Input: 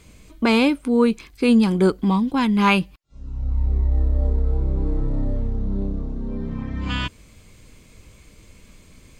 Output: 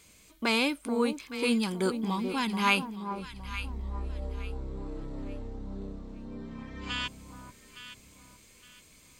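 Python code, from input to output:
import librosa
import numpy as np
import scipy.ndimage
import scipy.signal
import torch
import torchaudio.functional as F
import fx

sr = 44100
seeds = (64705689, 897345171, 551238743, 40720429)

y = fx.tilt_eq(x, sr, slope=2.5)
y = fx.echo_alternate(y, sr, ms=432, hz=1100.0, feedback_pct=55, wet_db=-7)
y = y * 10.0 ** (-8.0 / 20.0)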